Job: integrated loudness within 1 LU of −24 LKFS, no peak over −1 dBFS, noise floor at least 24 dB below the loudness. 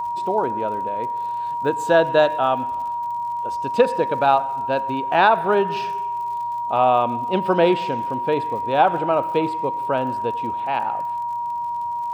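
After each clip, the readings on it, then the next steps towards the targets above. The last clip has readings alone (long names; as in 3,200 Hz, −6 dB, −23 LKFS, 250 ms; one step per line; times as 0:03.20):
crackle rate 50 per second; interfering tone 950 Hz; level of the tone −23 dBFS; integrated loudness −21.0 LKFS; sample peak −3.5 dBFS; target loudness −24.0 LKFS
→ click removal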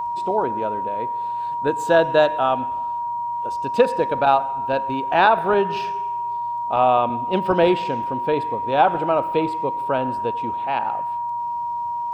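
crackle rate 0.74 per second; interfering tone 950 Hz; level of the tone −23 dBFS
→ notch filter 950 Hz, Q 30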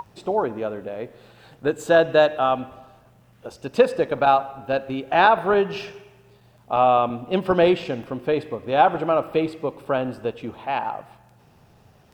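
interfering tone none found; integrated loudness −21.5 LKFS; sample peak −4.0 dBFS; target loudness −24.0 LKFS
→ level −2.5 dB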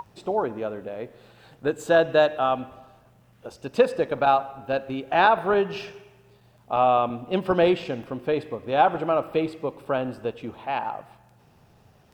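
integrated loudness −24.0 LKFS; sample peak −6.5 dBFS; background noise floor −57 dBFS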